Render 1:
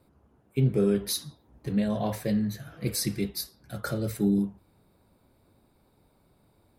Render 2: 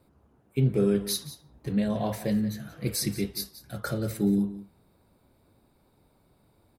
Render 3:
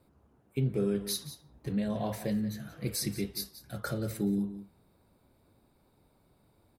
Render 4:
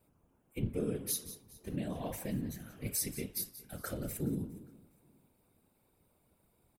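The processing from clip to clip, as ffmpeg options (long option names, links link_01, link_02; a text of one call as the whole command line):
ffmpeg -i in.wav -af "aecho=1:1:179:0.178" out.wav
ffmpeg -i in.wav -af "acompressor=threshold=-29dB:ratio=1.5,volume=-2.5dB" out.wav
ffmpeg -i in.wav -af "afftfilt=real='hypot(re,im)*cos(2*PI*random(0))':imag='hypot(re,im)*sin(2*PI*random(1))':win_size=512:overlap=0.75,aecho=1:1:412|824:0.0708|0.0219,aexciter=amount=1.1:drive=6.8:freq=2300" out.wav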